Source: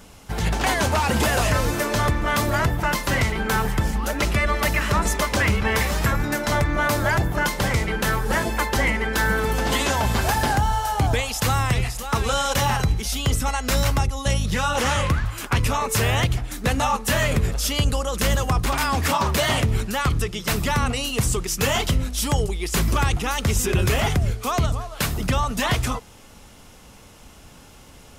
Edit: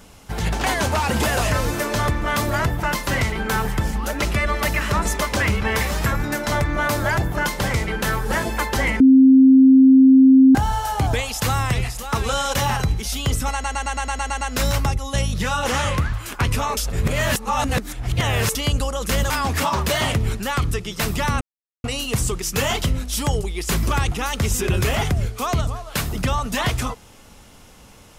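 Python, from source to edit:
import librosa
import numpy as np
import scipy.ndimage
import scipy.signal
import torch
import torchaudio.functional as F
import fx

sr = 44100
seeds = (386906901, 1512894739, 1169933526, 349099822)

y = fx.edit(x, sr, fx.bleep(start_s=9.0, length_s=1.55, hz=264.0, db=-7.0),
    fx.stutter(start_s=13.53, slice_s=0.11, count=9),
    fx.reverse_span(start_s=15.89, length_s=1.78),
    fx.cut(start_s=18.42, length_s=0.36),
    fx.insert_silence(at_s=20.89, length_s=0.43), tone=tone)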